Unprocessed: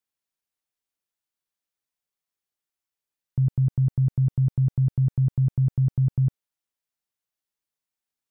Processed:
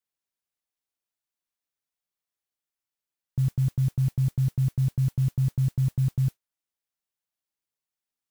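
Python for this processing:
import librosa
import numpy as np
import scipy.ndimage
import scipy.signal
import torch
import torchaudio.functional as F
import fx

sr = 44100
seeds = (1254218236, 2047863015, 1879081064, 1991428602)

y = fx.mod_noise(x, sr, seeds[0], snr_db=27)
y = y * librosa.db_to_amplitude(-2.5)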